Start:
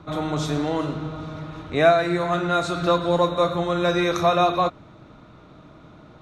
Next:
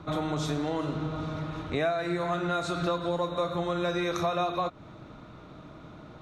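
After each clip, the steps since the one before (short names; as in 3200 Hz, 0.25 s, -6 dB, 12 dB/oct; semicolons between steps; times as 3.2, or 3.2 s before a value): compressor 4:1, threshold -27 dBFS, peak gain reduction 13.5 dB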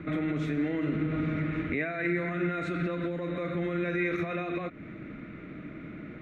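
limiter -26.5 dBFS, peak gain reduction 10.5 dB; EQ curve 120 Hz 0 dB, 200 Hz +8 dB, 310 Hz +8 dB, 620 Hz -2 dB, 910 Hz -12 dB, 2100 Hz +15 dB, 3300 Hz -5 dB, 4900 Hz -14 dB, 11000 Hz -12 dB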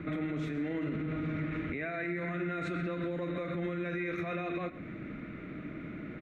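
limiter -27.5 dBFS, peak gain reduction 9 dB; echo 0.127 s -16.5 dB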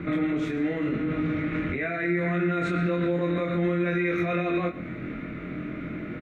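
doubler 23 ms -3 dB; gain +6 dB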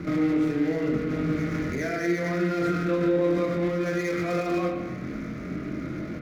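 median filter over 15 samples; spring tank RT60 1.2 s, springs 38/55 ms, chirp 20 ms, DRR 3.5 dB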